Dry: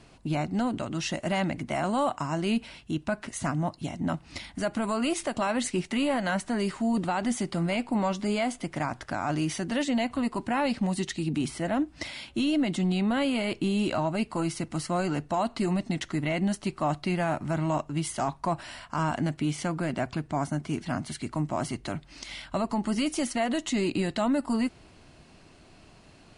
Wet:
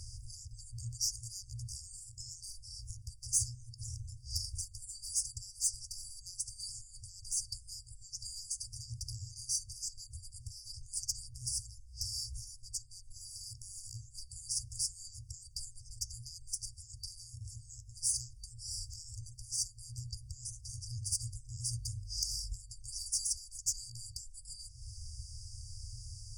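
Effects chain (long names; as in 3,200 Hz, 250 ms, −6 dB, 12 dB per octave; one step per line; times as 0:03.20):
mains-hum notches 50/100/150/200/250 Hz
downward compressor 4 to 1, threshold −39 dBFS, peak gain reduction 14.5 dB
graphic EQ with 10 bands 250 Hz +3 dB, 500 Hz −11 dB, 2,000 Hz +7 dB
tube saturation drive 34 dB, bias 0.25
brick-wall band-stop 120–4,600 Hz
level +15 dB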